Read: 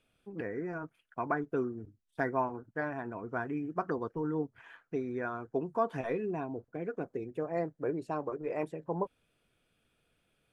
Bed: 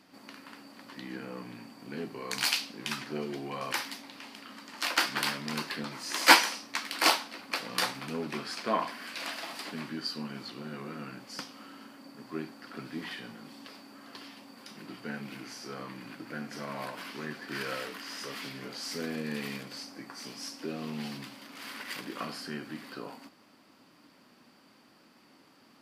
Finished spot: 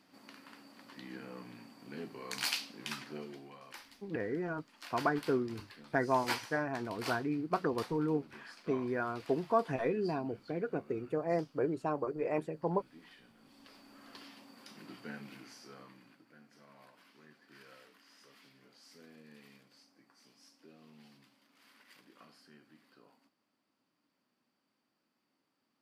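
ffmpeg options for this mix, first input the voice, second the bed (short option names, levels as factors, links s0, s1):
-filter_complex "[0:a]adelay=3750,volume=1.12[s0];[1:a]volume=2.11,afade=t=out:st=2.95:d=0.66:silence=0.251189,afade=t=in:st=13.34:d=0.72:silence=0.237137,afade=t=out:st=14.94:d=1.33:silence=0.158489[s1];[s0][s1]amix=inputs=2:normalize=0"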